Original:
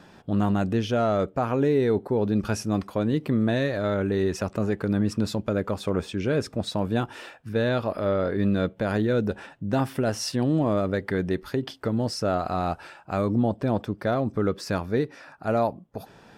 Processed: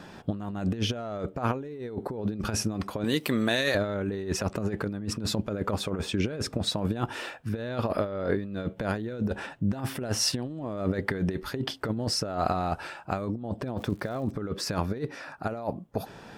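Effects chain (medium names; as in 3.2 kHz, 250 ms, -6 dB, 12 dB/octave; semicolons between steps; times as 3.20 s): 3.04–3.75 s: tilt EQ +4 dB/octave; compressor with a negative ratio -28 dBFS, ratio -0.5; 13.77–14.33 s: crackle 360 per s -> 87 per s -42 dBFS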